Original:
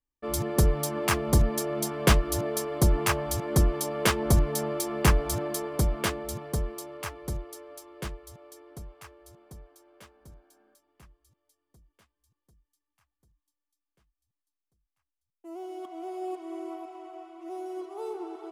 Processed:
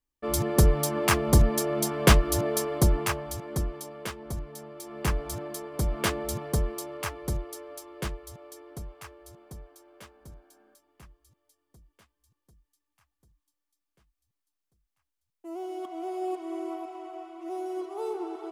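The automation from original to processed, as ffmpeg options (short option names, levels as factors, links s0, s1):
-af "volume=8.91,afade=t=out:st=2.63:d=0.58:silence=0.421697,afade=t=out:st=3.21:d=0.95:silence=0.375837,afade=t=in:st=4.75:d=0.4:silence=0.398107,afade=t=in:st=5.72:d=0.48:silence=0.375837"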